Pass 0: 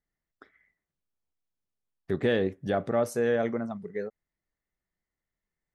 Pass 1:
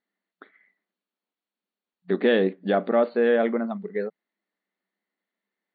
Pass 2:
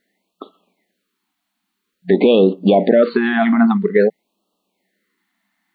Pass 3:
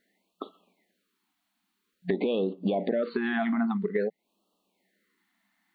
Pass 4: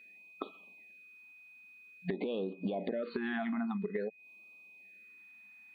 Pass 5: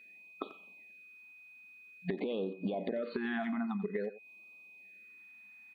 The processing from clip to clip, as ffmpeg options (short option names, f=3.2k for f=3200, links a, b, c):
-af "afftfilt=real='re*between(b*sr/4096,180,4600)':imag='im*between(b*sr/4096,180,4600)':win_size=4096:overlap=0.75,volume=5.5dB"
-af "alimiter=level_in=18.5dB:limit=-1dB:release=50:level=0:latency=1,afftfilt=real='re*(1-between(b*sr/1024,440*pow(1900/440,0.5+0.5*sin(2*PI*0.5*pts/sr))/1.41,440*pow(1900/440,0.5+0.5*sin(2*PI*0.5*pts/sr))*1.41))':imag='im*(1-between(b*sr/1024,440*pow(1900/440,0.5+0.5*sin(2*PI*0.5*pts/sr))/1.41,440*pow(1900/440,0.5+0.5*sin(2*PI*0.5*pts/sr))*1.41))':win_size=1024:overlap=0.75,volume=-1.5dB"
-af "acompressor=threshold=-23dB:ratio=4,volume=-3.5dB"
-af "aeval=exprs='val(0)+0.002*sin(2*PI*2500*n/s)':c=same,acompressor=threshold=-33dB:ratio=5"
-filter_complex "[0:a]asplit=2[a][b];[b]adelay=90,highpass=300,lowpass=3.4k,asoftclip=type=hard:threshold=-29dB,volume=-14dB[c];[a][c]amix=inputs=2:normalize=0"